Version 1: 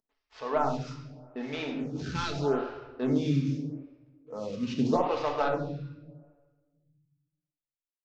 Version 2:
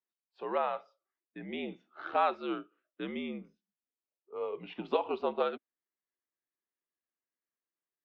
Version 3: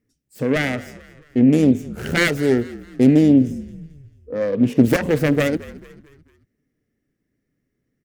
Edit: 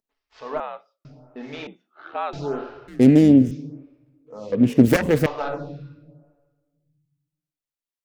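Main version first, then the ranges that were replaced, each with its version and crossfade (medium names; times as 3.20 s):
1
0.60–1.05 s: from 2
1.67–2.33 s: from 2
2.88–3.51 s: from 3
4.52–5.26 s: from 3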